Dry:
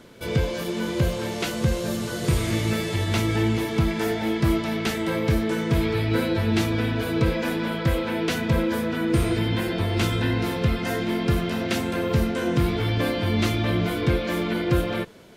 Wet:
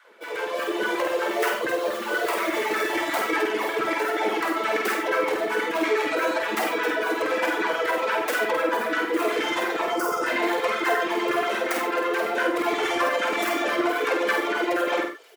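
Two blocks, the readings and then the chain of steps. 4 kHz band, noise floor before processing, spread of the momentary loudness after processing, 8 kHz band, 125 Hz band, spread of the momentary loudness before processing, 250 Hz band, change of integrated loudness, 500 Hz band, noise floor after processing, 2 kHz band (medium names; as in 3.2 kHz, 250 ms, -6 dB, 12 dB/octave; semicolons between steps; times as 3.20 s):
-1.0 dB, -30 dBFS, 2 LU, -0.5 dB, under -30 dB, 3 LU, -6.0 dB, 0.0 dB, +2.5 dB, -30 dBFS, +6.0 dB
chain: tracing distortion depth 0.36 ms; LFO high-pass saw down 8.4 Hz 280–1700 Hz; three-band isolator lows -19 dB, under 350 Hz, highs -17 dB, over 2.5 kHz; feedback echo behind a high-pass 265 ms, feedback 59%, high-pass 3.7 kHz, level -11 dB; peak limiter -20.5 dBFS, peak gain reduction 10.5 dB; flange 1.2 Hz, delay 3.1 ms, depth 6.2 ms, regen +69%; treble shelf 2.9 kHz +12 dB; time-frequency box 9.93–10.27 s, 1.5–4.6 kHz -10 dB; reverb removal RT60 1.8 s; doubling 49 ms -5 dB; level rider gain up to 10 dB; gated-style reverb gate 110 ms rising, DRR 7.5 dB; trim -1 dB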